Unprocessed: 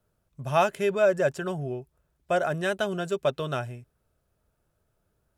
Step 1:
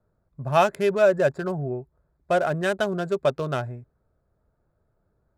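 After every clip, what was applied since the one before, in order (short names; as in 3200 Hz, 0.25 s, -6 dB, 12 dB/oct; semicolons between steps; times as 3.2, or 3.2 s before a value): Wiener smoothing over 15 samples; gain +3.5 dB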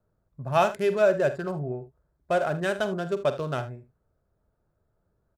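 early reflections 47 ms -12.5 dB, 77 ms -15.5 dB; gain -3 dB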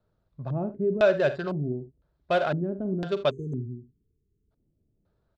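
spectral delete 3.3–4.51, 470–6100 Hz; LFO low-pass square 0.99 Hz 280–3900 Hz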